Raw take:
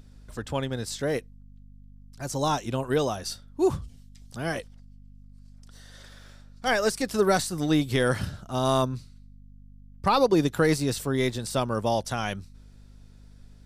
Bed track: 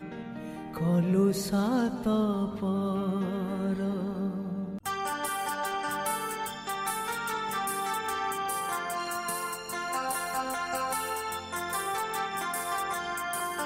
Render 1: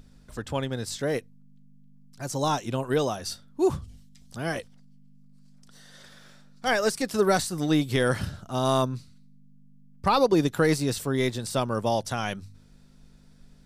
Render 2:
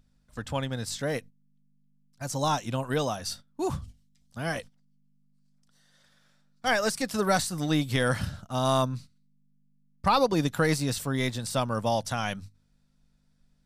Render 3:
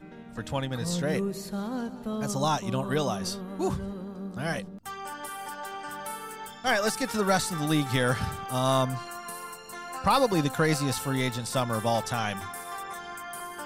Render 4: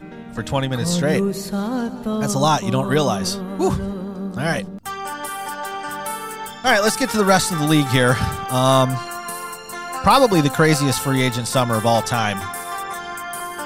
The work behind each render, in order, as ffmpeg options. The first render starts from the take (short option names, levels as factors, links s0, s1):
-af "bandreject=f=50:t=h:w=4,bandreject=f=100:t=h:w=4"
-af "equalizer=f=380:t=o:w=0.57:g=-8.5,agate=range=0.224:threshold=0.00794:ratio=16:detection=peak"
-filter_complex "[1:a]volume=0.501[s0];[0:a][s0]amix=inputs=2:normalize=0"
-af "volume=2.99"